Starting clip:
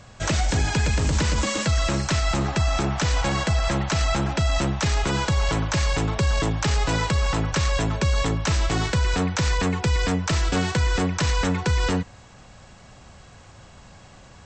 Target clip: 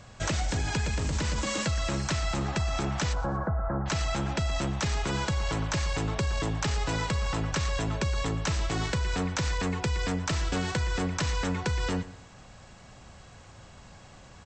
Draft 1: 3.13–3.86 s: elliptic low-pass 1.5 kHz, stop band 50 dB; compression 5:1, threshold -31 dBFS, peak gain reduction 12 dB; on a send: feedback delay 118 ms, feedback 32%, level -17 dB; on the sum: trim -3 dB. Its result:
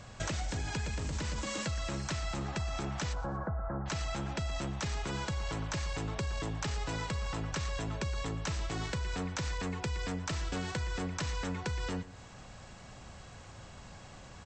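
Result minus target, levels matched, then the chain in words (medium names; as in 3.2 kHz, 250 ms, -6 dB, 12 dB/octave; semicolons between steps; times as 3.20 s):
compression: peak gain reduction +7 dB
3.13–3.86 s: elliptic low-pass 1.5 kHz, stop band 50 dB; compression 5:1, threshold -22.5 dBFS, peak gain reduction 5 dB; on a send: feedback delay 118 ms, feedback 32%, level -17 dB; on the sum: trim -3 dB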